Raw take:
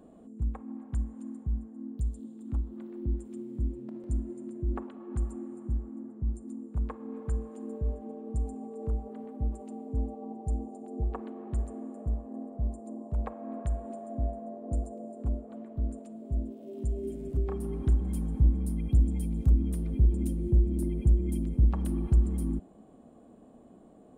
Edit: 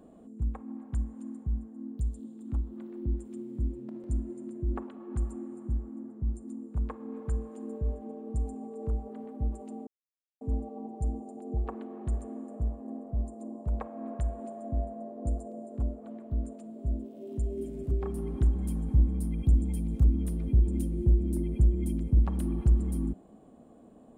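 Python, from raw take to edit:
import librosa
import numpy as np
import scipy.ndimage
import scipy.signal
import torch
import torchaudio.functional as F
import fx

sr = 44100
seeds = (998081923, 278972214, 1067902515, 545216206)

y = fx.edit(x, sr, fx.insert_silence(at_s=9.87, length_s=0.54), tone=tone)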